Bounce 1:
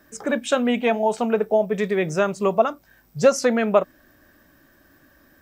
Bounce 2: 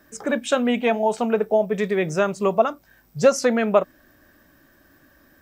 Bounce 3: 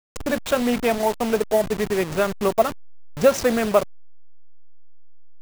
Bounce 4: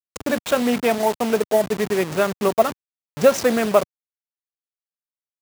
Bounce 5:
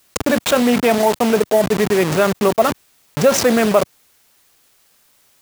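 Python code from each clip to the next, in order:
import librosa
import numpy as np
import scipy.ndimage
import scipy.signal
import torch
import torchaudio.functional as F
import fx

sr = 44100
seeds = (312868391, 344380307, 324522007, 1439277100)

y1 = x
y2 = fx.delta_hold(y1, sr, step_db=-24.0)
y3 = scipy.signal.sosfilt(scipy.signal.butter(2, 120.0, 'highpass', fs=sr, output='sos'), y2)
y3 = y3 * librosa.db_to_amplitude(1.5)
y4 = fx.env_flatten(y3, sr, amount_pct=50)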